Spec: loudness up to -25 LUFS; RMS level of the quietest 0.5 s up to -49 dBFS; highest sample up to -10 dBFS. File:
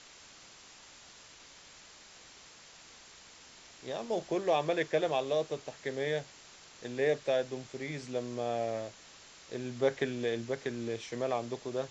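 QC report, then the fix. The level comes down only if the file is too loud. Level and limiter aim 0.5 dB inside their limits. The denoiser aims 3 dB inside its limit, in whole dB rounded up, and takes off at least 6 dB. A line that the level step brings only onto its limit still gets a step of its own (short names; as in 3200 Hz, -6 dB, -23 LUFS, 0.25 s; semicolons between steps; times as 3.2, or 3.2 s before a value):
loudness -34.0 LUFS: OK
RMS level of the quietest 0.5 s -55 dBFS: OK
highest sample -16.5 dBFS: OK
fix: none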